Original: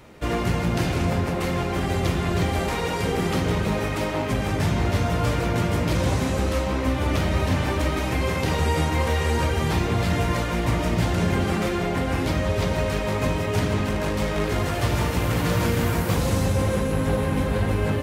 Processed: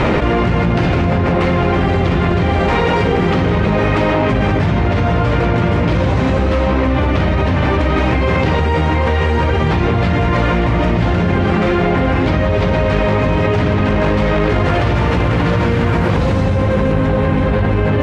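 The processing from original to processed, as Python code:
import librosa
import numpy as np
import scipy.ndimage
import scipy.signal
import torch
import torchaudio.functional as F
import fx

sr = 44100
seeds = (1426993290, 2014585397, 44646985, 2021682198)

y = scipy.signal.sosfilt(scipy.signal.butter(2, 2900.0, 'lowpass', fs=sr, output='sos'), x)
y = fx.env_flatten(y, sr, amount_pct=100)
y = F.gain(torch.from_numpy(y), 4.5).numpy()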